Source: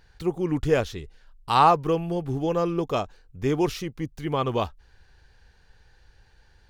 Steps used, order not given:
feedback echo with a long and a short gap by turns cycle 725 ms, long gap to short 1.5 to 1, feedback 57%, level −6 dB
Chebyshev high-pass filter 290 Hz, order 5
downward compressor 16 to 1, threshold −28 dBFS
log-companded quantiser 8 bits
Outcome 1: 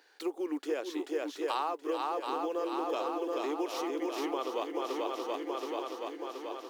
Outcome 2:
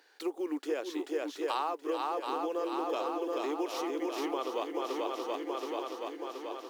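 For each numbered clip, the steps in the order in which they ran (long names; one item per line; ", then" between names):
feedback echo with a long and a short gap by turns, then downward compressor, then Chebyshev high-pass filter, then log-companded quantiser
feedback echo with a long and a short gap by turns, then downward compressor, then log-companded quantiser, then Chebyshev high-pass filter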